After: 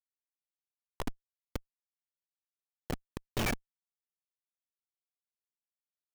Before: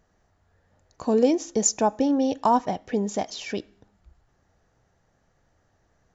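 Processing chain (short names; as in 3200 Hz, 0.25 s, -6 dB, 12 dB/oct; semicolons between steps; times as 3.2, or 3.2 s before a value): flipped gate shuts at -21 dBFS, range -34 dB; HPF 59 Hz 6 dB/oct; Schmitt trigger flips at -33 dBFS; gain +17.5 dB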